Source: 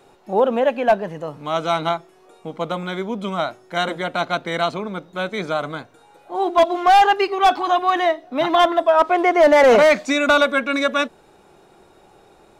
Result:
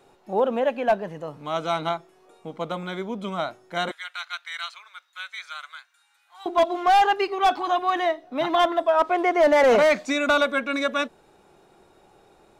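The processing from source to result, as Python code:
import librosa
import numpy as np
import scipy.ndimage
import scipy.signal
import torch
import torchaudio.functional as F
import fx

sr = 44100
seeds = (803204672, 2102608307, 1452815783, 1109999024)

y = fx.highpass(x, sr, hz=1400.0, slope=24, at=(3.91, 6.46))
y = y * librosa.db_to_amplitude(-5.0)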